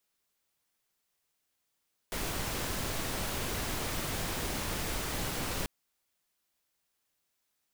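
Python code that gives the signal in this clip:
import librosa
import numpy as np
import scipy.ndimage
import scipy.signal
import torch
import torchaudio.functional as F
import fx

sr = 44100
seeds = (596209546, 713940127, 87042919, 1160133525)

y = fx.noise_colour(sr, seeds[0], length_s=3.54, colour='pink', level_db=-34.5)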